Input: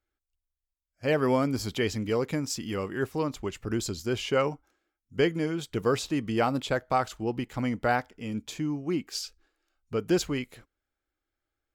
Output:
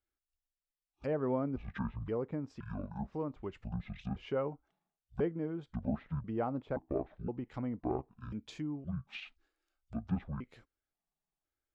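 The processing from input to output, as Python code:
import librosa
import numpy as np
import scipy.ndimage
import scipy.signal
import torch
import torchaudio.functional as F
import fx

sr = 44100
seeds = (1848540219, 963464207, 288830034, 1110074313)

y = fx.pitch_trill(x, sr, semitones=-11.5, every_ms=520)
y = fx.env_lowpass_down(y, sr, base_hz=1000.0, full_db=-26.5)
y = F.gain(torch.from_numpy(y), -8.0).numpy()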